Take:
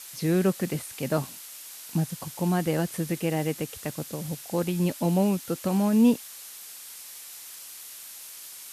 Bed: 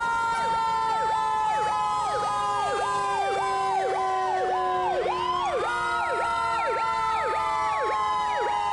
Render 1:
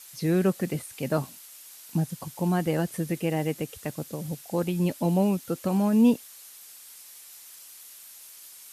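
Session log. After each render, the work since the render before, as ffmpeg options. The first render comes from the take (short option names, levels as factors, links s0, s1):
-af "afftdn=nr=6:nf=-43"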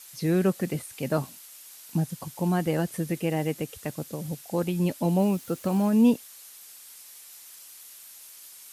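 -filter_complex "[0:a]asettb=1/sr,asplit=3[s0][s1][s2];[s0]atrim=end=5.194[s3];[s1]atrim=start=5.19:end=5.9,asetpts=PTS-STARTPTS,afade=t=in:d=0.004:c=qsin,afade=t=out:st=0.706:d=0.004:c=qsin,acrusher=bits=7:mix=0:aa=0.5[s4];[s2]atrim=start=5.896[s5];[s3][s4]acrossfade=d=0.004:c1=hsin:c2=qsin[s6];[s6][s5]acrossfade=d=0.004:c1=qsin:c2=hsin"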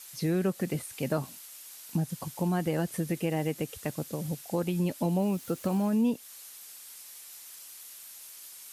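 -af "acompressor=threshold=0.0501:ratio=2.5"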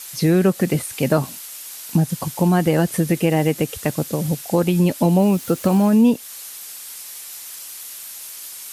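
-af "volume=3.98"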